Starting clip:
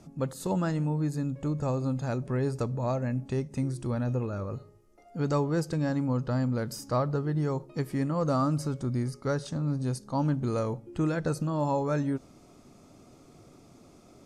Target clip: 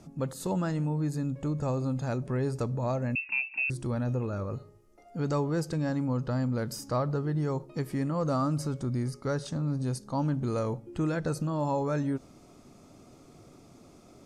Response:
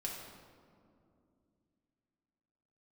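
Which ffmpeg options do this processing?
-filter_complex "[0:a]asplit=2[a][b];[b]alimiter=level_in=1dB:limit=-24dB:level=0:latency=1,volume=-1dB,volume=-2dB[c];[a][c]amix=inputs=2:normalize=0,asettb=1/sr,asplit=3[d][e][f];[d]atrim=end=3.154[g];[e]atrim=start=3.15:end=3.7,asetpts=PTS-STARTPTS,afade=t=in:d=0.004:c=qsin,afade=t=out:st=0.546:d=0.004:c=qsin,lowpass=f=2.4k:t=q:w=0.5098,lowpass=f=2.4k:t=q:w=0.6013,lowpass=f=2.4k:t=q:w=0.9,lowpass=f=2.4k:t=q:w=2.563,afreqshift=-2800[h];[f]atrim=start=3.696[i];[g][h]acrossfade=d=0.004:c1=hsin:c2=qsin[j];[j][i]acrossfade=d=0.004:c1=qsin:c2=hsin,volume=-4.5dB"

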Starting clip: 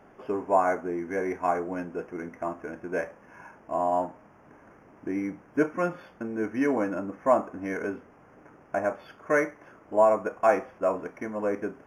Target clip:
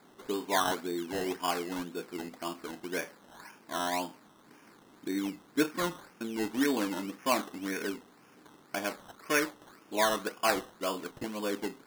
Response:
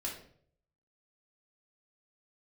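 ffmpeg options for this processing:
-af "highpass=200,equalizer=f=610:t=o:w=0.86:g=-10.5,acrusher=samples=15:mix=1:aa=0.000001:lfo=1:lforange=9:lforate=1.9"

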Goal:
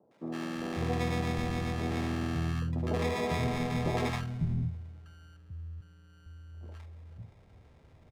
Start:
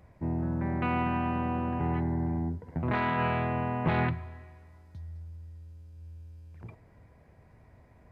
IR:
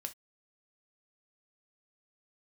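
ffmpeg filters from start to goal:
-filter_complex "[0:a]asettb=1/sr,asplit=3[a][b][c];[a]atrim=end=5.254[d];[b]atrim=start=5.25:end=5.71,asetpts=PTS-STARTPTS,afade=t=in:d=0.004:c=qsin,afade=t=out:st=0.456:d=0.004:c=qsin,lowshelf=f=110:t=q:w=1.5:g=-12.5[e];[c]atrim=start=5.706[f];[d][e]acrossfade=d=0.004:c1=hsin:c2=qsin[g];[g][f]acrossfade=d=0.004:c1=qsin:c2=hsin,acrusher=samples=30:mix=1:aa=0.000001,aemphasis=mode=reproduction:type=50fm,acrossover=split=210|830[h][i][j];[j]adelay=110[k];[h]adelay=550[l];[l][i][k]amix=inputs=3:normalize=0"

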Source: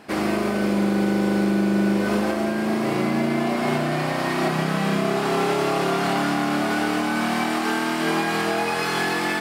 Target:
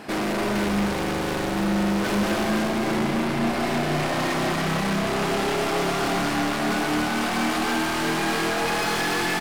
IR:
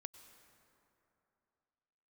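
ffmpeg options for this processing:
-filter_complex "[0:a]asettb=1/sr,asplit=3[a][b][c];[a]atrim=end=0.554[d];[b]atrim=start=0.55:end=2.68,asetpts=PTS-STARTPTS,afade=t=in:d=0.004:c=qsin,afade=t=out:st=2.126:d=0.004:c=qsin,acontrast=33[e];[c]atrim=start=2.676[f];[d][e]acrossfade=d=0.004:c1=hsin:c2=qsin[g];[g][f]acrossfade=d=0.004:c1=qsin:c2=hsin,aeval=exprs='(tanh(31.6*val(0)+0.1)-tanh(0.1))/31.6':c=same,aecho=1:1:172|285.7:0.282|0.501,volume=6.5dB"

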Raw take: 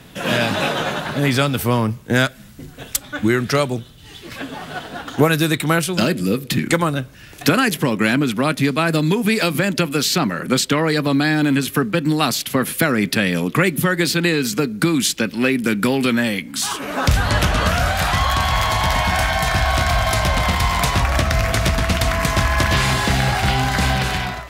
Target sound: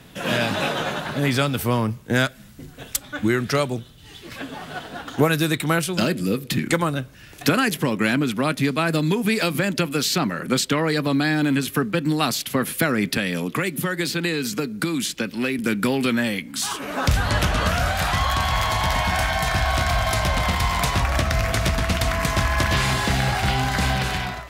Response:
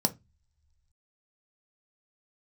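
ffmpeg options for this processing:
-filter_complex "[0:a]asettb=1/sr,asplit=3[a][b][c];[a]atrim=end=13.174[d];[b]atrim=start=13.17:end=15.59,asetpts=PTS-STARTPTS,afade=t=in:d=0.004:c=qsin,afade=t=out:st=2.416:d=0.004:c=qsin,acrossover=split=140|3000[e][f][g];[e]acompressor=threshold=-37dB:ratio=4[h];[f]acompressor=threshold=-18dB:ratio=4[i];[g]acompressor=threshold=-23dB:ratio=4[j];[h][i][j]amix=inputs=3:normalize=0[k];[c]atrim=start=15.586[l];[d][k]acrossfade=d=0.004:c1=hsin:c2=qsin[m];[m][l]acrossfade=d=0.004:c1=qsin:c2=hsin,volume=-3.5dB"

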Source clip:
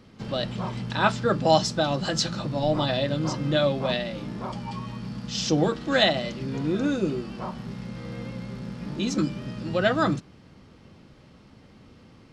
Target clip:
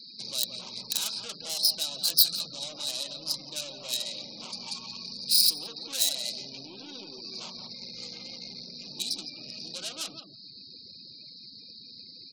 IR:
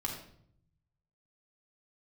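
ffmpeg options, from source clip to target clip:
-filter_complex "[0:a]asplit=2[a][b];[b]aeval=exprs='0.188*(abs(mod(val(0)/0.188+3,4)-2)-1)':c=same,volume=-4dB[c];[a][c]amix=inputs=2:normalize=0,acompressor=threshold=-32dB:ratio=4,asuperstop=centerf=3100:order=20:qfactor=2.6,aresample=11025,aresample=44100,aeval=exprs='(tanh(63.1*val(0)+0.25)-tanh(0.25))/63.1':c=same,aexciter=amount=7.5:drive=8.5:freq=2.8k,aemphasis=mode=production:type=bsi,asplit=2[d][e];[e]adelay=171,lowpass=f=1.2k:p=1,volume=-4.5dB,asplit=2[f][g];[g]adelay=171,lowpass=f=1.2k:p=1,volume=0.24,asplit=2[h][i];[i]adelay=171,lowpass=f=1.2k:p=1,volume=0.24[j];[f][h][j]amix=inputs=3:normalize=0[k];[d][k]amix=inputs=2:normalize=0,afftfilt=real='re*gte(hypot(re,im),0.01)':imag='im*gte(hypot(re,im),0.01)':win_size=1024:overlap=0.75,volume=-6.5dB"

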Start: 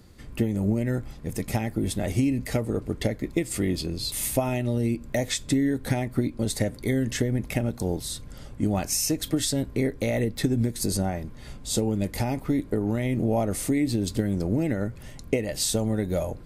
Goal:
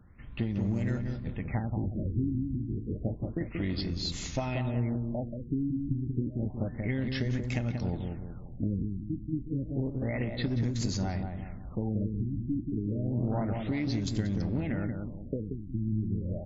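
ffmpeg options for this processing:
-filter_complex "[0:a]equalizer=f=440:w=1:g=-9,bandreject=f=352.5:t=h:w=4,bandreject=f=705:t=h:w=4,bandreject=f=1.0575k:t=h:w=4,bandreject=f=1.41k:t=h:w=4,bandreject=f=1.7625k:t=h:w=4,bandreject=f=2.115k:t=h:w=4,bandreject=f=2.4675k:t=h:w=4,bandreject=f=2.82k:t=h:w=4,bandreject=f=3.1725k:t=h:w=4,bandreject=f=3.525k:t=h:w=4,bandreject=f=3.8775k:t=h:w=4,bandreject=f=4.23k:t=h:w=4,bandreject=f=4.5825k:t=h:w=4,bandreject=f=4.935k:t=h:w=4,bandreject=f=5.2875k:t=h:w=4,bandreject=f=5.64k:t=h:w=4,bandreject=f=5.9925k:t=h:w=4,bandreject=f=6.345k:t=h:w=4,bandreject=f=6.6975k:t=h:w=4,bandreject=f=7.05k:t=h:w=4,bandreject=f=7.4025k:t=h:w=4,bandreject=f=7.755k:t=h:w=4,bandreject=f=8.1075k:t=h:w=4,bandreject=f=8.46k:t=h:w=4,bandreject=f=8.8125k:t=h:w=4,bandreject=f=9.165k:t=h:w=4,bandreject=f=9.5175k:t=h:w=4,bandreject=f=9.87k:t=h:w=4,bandreject=f=10.2225k:t=h:w=4,asplit=2[a][b];[b]adelay=183,lowpass=f=1.1k:p=1,volume=-4dB,asplit=2[c][d];[d]adelay=183,lowpass=f=1.1k:p=1,volume=0.47,asplit=2[e][f];[f]adelay=183,lowpass=f=1.1k:p=1,volume=0.47,asplit=2[g][h];[h]adelay=183,lowpass=f=1.1k:p=1,volume=0.47,asplit=2[i][j];[j]adelay=183,lowpass=f=1.1k:p=1,volume=0.47,asplit=2[k][l];[l]adelay=183,lowpass=f=1.1k:p=1,volume=0.47[m];[c][e][g][i][k][m]amix=inputs=6:normalize=0[n];[a][n]amix=inputs=2:normalize=0,aeval=exprs='clip(val(0),-1,0.0562)':c=same,afftfilt=real='re*lt(b*sr/1024,350*pow(7500/350,0.5+0.5*sin(2*PI*0.3*pts/sr)))':imag='im*lt(b*sr/1024,350*pow(7500/350,0.5+0.5*sin(2*PI*0.3*pts/sr)))':win_size=1024:overlap=0.75,volume=-3dB"

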